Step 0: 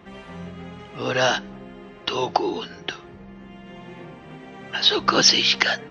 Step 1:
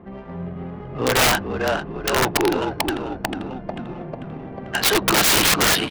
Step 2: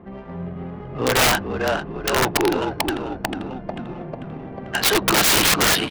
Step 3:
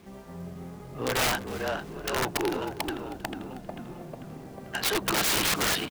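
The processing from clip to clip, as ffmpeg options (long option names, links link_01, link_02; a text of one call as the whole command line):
ffmpeg -i in.wav -filter_complex "[0:a]asplit=9[link_01][link_02][link_03][link_04][link_05][link_06][link_07][link_08][link_09];[link_02]adelay=444,afreqshift=-41,volume=-7dB[link_10];[link_03]adelay=888,afreqshift=-82,volume=-11.2dB[link_11];[link_04]adelay=1332,afreqshift=-123,volume=-15.3dB[link_12];[link_05]adelay=1776,afreqshift=-164,volume=-19.5dB[link_13];[link_06]adelay=2220,afreqshift=-205,volume=-23.6dB[link_14];[link_07]adelay=2664,afreqshift=-246,volume=-27.8dB[link_15];[link_08]adelay=3108,afreqshift=-287,volume=-31.9dB[link_16];[link_09]adelay=3552,afreqshift=-328,volume=-36.1dB[link_17];[link_01][link_10][link_11][link_12][link_13][link_14][link_15][link_16][link_17]amix=inputs=9:normalize=0,adynamicsmooth=sensitivity=1.5:basefreq=920,aeval=exprs='(mod(6.68*val(0)+1,2)-1)/6.68':channel_layout=same,volume=6dB" out.wav
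ffmpeg -i in.wav -af anull out.wav
ffmpeg -i in.wav -af "acrusher=bits=7:mix=0:aa=0.000001,aecho=1:1:316|632:0.112|0.0281,volume=-9dB" out.wav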